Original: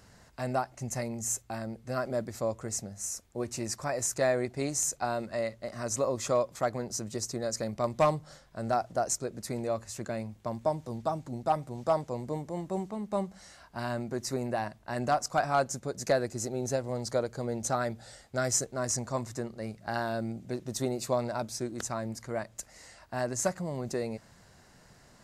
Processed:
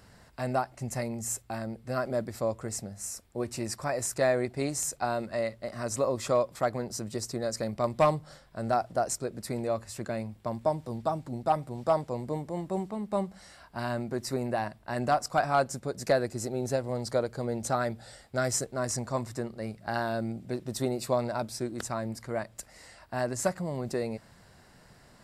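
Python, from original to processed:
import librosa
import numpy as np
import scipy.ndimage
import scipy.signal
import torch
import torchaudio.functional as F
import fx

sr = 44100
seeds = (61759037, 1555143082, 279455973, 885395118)

y = fx.peak_eq(x, sr, hz=6400.0, db=-9.0, octaves=0.27)
y = y * librosa.db_to_amplitude(1.5)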